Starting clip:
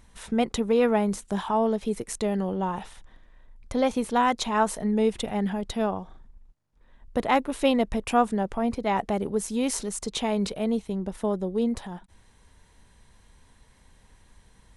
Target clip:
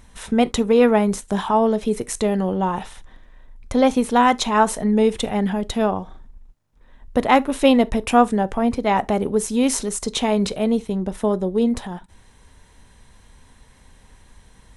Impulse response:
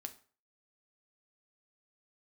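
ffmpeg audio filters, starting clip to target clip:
-filter_complex "[0:a]bandreject=frequency=4600:width=23,asplit=2[link_01][link_02];[1:a]atrim=start_sample=2205,atrim=end_sample=3528[link_03];[link_02][link_03]afir=irnorm=-1:irlink=0,volume=-1.5dB[link_04];[link_01][link_04]amix=inputs=2:normalize=0,volume=3dB"

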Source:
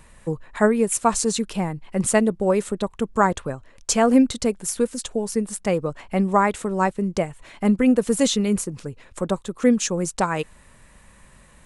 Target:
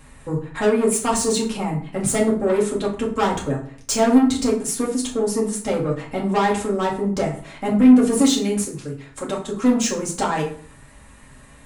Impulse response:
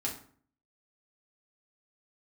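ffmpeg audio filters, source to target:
-filter_complex "[0:a]asettb=1/sr,asplit=3[link_01][link_02][link_03];[link_01]atrim=end=8.214[link_04];[link_02]atrim=start=8.21:end=9.47,asetpts=PTS-STARTPTS,afade=type=in:duration=0.004:curve=qsin,afade=type=out:start_time=1.256:duration=0.004:curve=qsin,lowshelf=frequency=490:gain=-7[link_05];[link_03]atrim=start=9.466[link_06];[link_04][link_05]acrossfade=duration=0.004:curve1=hsin:curve2=qsin[link_07];[link_07][link_06]acrossfade=duration=0.004:curve1=qsin:curve2=hsin,asoftclip=type=tanh:threshold=-18.5dB[link_08];[1:a]atrim=start_sample=2205[link_09];[link_08][link_09]afir=irnorm=-1:irlink=0,volume=1.5dB"

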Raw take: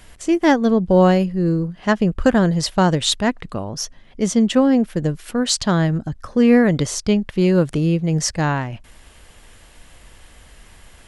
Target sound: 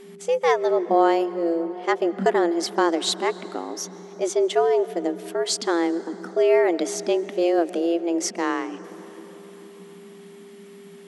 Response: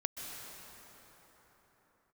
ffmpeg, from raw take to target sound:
-filter_complex "[0:a]afreqshift=170,aeval=exprs='val(0)+0.0141*sin(2*PI*400*n/s)':channel_layout=same,asplit=2[link_01][link_02];[1:a]atrim=start_sample=2205,highshelf=frequency=8300:gain=-10.5[link_03];[link_02][link_03]afir=irnorm=-1:irlink=0,volume=-13dB[link_04];[link_01][link_04]amix=inputs=2:normalize=0,volume=-6.5dB"

